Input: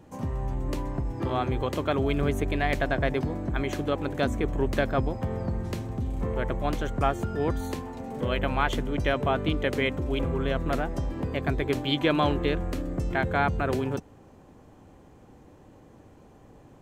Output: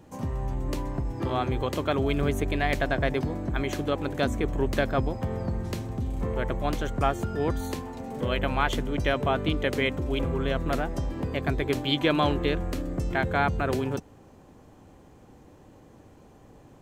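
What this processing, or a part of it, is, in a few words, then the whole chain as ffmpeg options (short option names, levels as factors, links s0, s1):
presence and air boost: -af "equalizer=f=4700:t=o:w=1.4:g=2,highshelf=f=9100:g=4"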